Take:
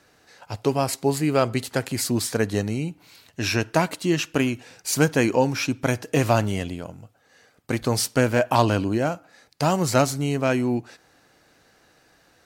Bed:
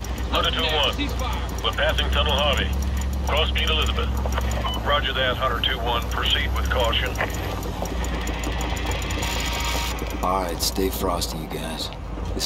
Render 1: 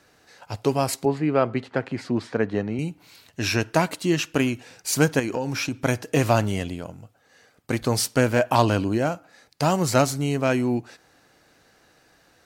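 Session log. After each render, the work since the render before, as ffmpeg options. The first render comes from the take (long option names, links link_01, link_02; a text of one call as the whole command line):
ffmpeg -i in.wav -filter_complex "[0:a]asettb=1/sr,asplit=3[link_01][link_02][link_03];[link_01]atrim=end=1.054[link_04];[link_02]atrim=start=1.05:end=2.79,asetpts=PTS-STARTPTS,afade=type=in:duration=0.004:curve=qsin,afade=type=out:start_time=1.736:duration=0.004:curve=qsin,highpass=130,lowpass=2200[link_05];[link_03]atrim=start=2.786[link_06];[link_04][link_05]acrossfade=duration=0.004:curve1=hsin:curve2=qsin[link_07];[link_07][link_06]acrossfade=duration=0.004:curve1=qsin:curve2=hsin,asettb=1/sr,asplit=3[link_08][link_09][link_10];[link_08]atrim=end=5.194[link_11];[link_09]atrim=start=5.19:end=5.82,asetpts=PTS-STARTPTS,afade=type=in:duration=0.004:curve=qsin,afade=type=out:start_time=0.626:duration=0.004:curve=qsin,acompressor=threshold=-22dB:ratio=6:attack=3.2:release=140:knee=1:detection=peak[link_12];[link_10]atrim=start=5.816[link_13];[link_11][link_12]acrossfade=duration=0.004:curve1=hsin:curve2=qsin[link_14];[link_14][link_13]acrossfade=duration=0.004:curve1=qsin:curve2=hsin" out.wav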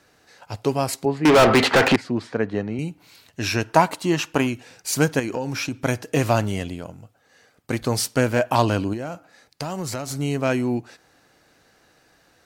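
ffmpeg -i in.wav -filter_complex "[0:a]asettb=1/sr,asplit=3[link_01][link_02][link_03];[link_01]atrim=end=1.254[link_04];[link_02]atrim=start=1.25:end=1.96,asetpts=PTS-STARTPTS,afade=type=in:duration=0.004:curve=qsin,afade=type=out:start_time=0.706:duration=0.004:curve=qsin,asplit=2[link_05][link_06];[link_06]highpass=frequency=720:poles=1,volume=36dB,asoftclip=type=tanh:threshold=-6.5dB[link_07];[link_05][link_07]amix=inputs=2:normalize=0,lowpass=frequency=7900:poles=1,volume=-6dB[link_08];[link_03]atrim=start=1.956[link_09];[link_04][link_08]acrossfade=duration=0.004:curve1=hsin:curve2=qsin[link_10];[link_10][link_09]acrossfade=duration=0.004:curve1=qsin:curve2=hsin,asettb=1/sr,asplit=3[link_11][link_12][link_13];[link_11]atrim=end=3.694[link_14];[link_12]atrim=start=3.69:end=4.47,asetpts=PTS-STARTPTS,afade=type=in:duration=0.004:curve=qsin,afade=type=out:start_time=0.776:duration=0.004:curve=qsin,equalizer=frequency=910:width_type=o:width=0.84:gain=9.5[link_15];[link_13]atrim=start=4.466[link_16];[link_14][link_15]acrossfade=duration=0.004:curve1=hsin:curve2=qsin[link_17];[link_17][link_16]acrossfade=duration=0.004:curve1=qsin:curve2=hsin,asettb=1/sr,asplit=3[link_18][link_19][link_20];[link_18]atrim=end=8.934[link_21];[link_19]atrim=start=8.93:end=10.11,asetpts=PTS-STARTPTS,afade=type=in:duration=0.004:curve=qsin,afade=type=out:start_time=1.176:duration=0.004:curve=qsin,acompressor=threshold=-25dB:ratio=6:attack=3.2:release=140:knee=1:detection=peak[link_22];[link_20]atrim=start=10.106[link_23];[link_21][link_22]acrossfade=duration=0.004:curve1=hsin:curve2=qsin[link_24];[link_24][link_23]acrossfade=duration=0.004:curve1=qsin:curve2=hsin" out.wav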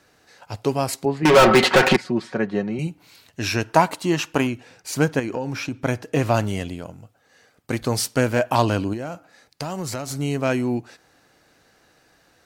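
ffmpeg -i in.wav -filter_complex "[0:a]asettb=1/sr,asplit=3[link_01][link_02][link_03];[link_01]atrim=end=1.224[link_04];[link_02]atrim=start=1.22:end=2.87,asetpts=PTS-STARTPTS,afade=type=in:duration=0.004:curve=qsin,afade=type=out:start_time=1.646:duration=0.004:curve=qsin,aecho=1:1:5.4:0.65,atrim=end_sample=72765[link_05];[link_03]atrim=start=2.866[link_06];[link_04][link_05]acrossfade=duration=0.004:curve1=hsin:curve2=qsin[link_07];[link_07][link_06]acrossfade=duration=0.004:curve1=qsin:curve2=hsin,asettb=1/sr,asplit=3[link_08][link_09][link_10];[link_08]atrim=end=4.474[link_11];[link_09]atrim=start=4.47:end=6.34,asetpts=PTS-STARTPTS,afade=type=in:duration=0.004:curve=qsin,afade=type=out:start_time=1.866:duration=0.004:curve=qsin,highshelf=frequency=4000:gain=-7.5[link_12];[link_10]atrim=start=6.336[link_13];[link_11][link_12]acrossfade=duration=0.004:curve1=hsin:curve2=qsin[link_14];[link_14][link_13]acrossfade=duration=0.004:curve1=qsin:curve2=hsin" out.wav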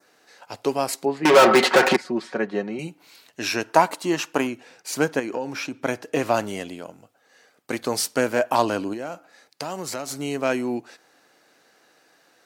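ffmpeg -i in.wav -af "highpass=270,adynamicequalizer=threshold=0.0141:dfrequency=3000:dqfactor=1.3:tfrequency=3000:tqfactor=1.3:attack=5:release=100:ratio=0.375:range=2.5:mode=cutabove:tftype=bell" out.wav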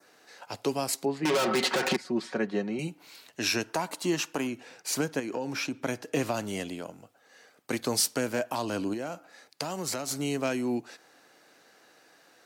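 ffmpeg -i in.wav -filter_complex "[0:a]alimiter=limit=-12dB:level=0:latency=1:release=243,acrossover=split=270|3000[link_01][link_02][link_03];[link_02]acompressor=threshold=-40dB:ratio=1.5[link_04];[link_01][link_04][link_03]amix=inputs=3:normalize=0" out.wav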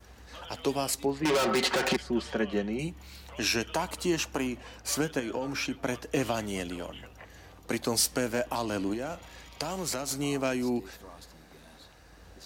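ffmpeg -i in.wav -i bed.wav -filter_complex "[1:a]volume=-25dB[link_01];[0:a][link_01]amix=inputs=2:normalize=0" out.wav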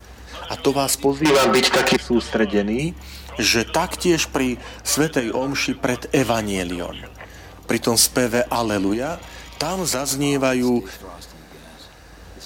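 ffmpeg -i in.wav -af "volume=10.5dB" out.wav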